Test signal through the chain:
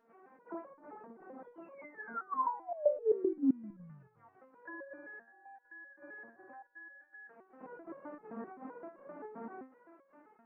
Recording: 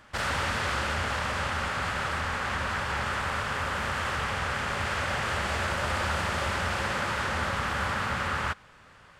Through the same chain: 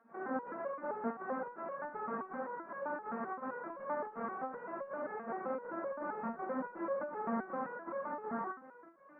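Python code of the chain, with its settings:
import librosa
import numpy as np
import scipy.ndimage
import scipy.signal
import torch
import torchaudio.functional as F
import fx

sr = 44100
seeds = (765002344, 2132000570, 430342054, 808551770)

y = fx.delta_mod(x, sr, bps=32000, step_db=-41.5)
y = scipy.signal.sosfilt(scipy.signal.butter(8, 170.0, 'highpass', fs=sr, output='sos'), y)
y = y + 10.0 ** (-22.5 / 20.0) * np.pad(y, (int(245 * sr / 1000.0), 0))[:len(y)]
y = fx.volume_shaper(y, sr, bpm=81, per_beat=2, depth_db=-14, release_ms=89.0, shape='slow start')
y = scipy.ndimage.gaussian_filter1d(y, 7.5, mode='constant')
y = fx.resonator_held(y, sr, hz=7.7, low_hz=230.0, high_hz=550.0)
y = y * 10.0 ** (13.0 / 20.0)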